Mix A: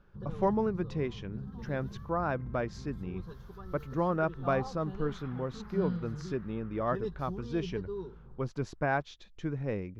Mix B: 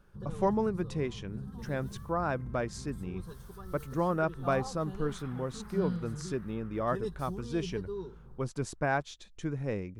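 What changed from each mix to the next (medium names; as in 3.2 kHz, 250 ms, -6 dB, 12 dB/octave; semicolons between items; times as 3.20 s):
master: remove boxcar filter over 5 samples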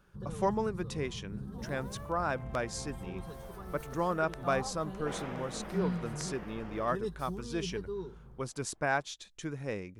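speech: add tilt EQ +2 dB/octave; second sound: remove ladder band-pass 1.5 kHz, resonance 55%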